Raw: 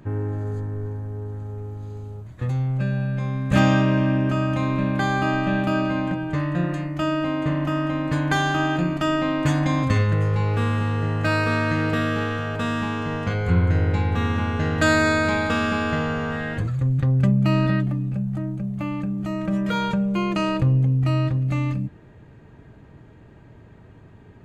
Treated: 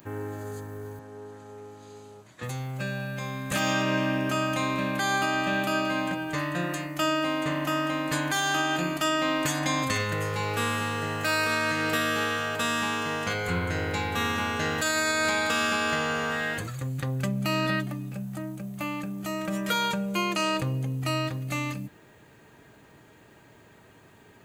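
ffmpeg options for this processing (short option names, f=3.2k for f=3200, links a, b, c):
-filter_complex "[0:a]asettb=1/sr,asplit=3[a][b][c];[a]atrim=end=0.994[d];[b]atrim=start=0.99:end=2.43,asetpts=PTS-STARTPTS,afade=t=in:d=0.004:c=qsin,afade=t=out:st=1.436:d=0.004:c=qsin,highpass=160,lowpass=6.7k[e];[c]atrim=start=2.426[f];[d][e]acrossfade=d=0.004:c1=hsin:c2=qsin[g];[g][f]acrossfade=d=0.004:c1=qsin:c2=hsin,aemphasis=mode=production:type=riaa,alimiter=limit=-15.5dB:level=0:latency=1:release=236"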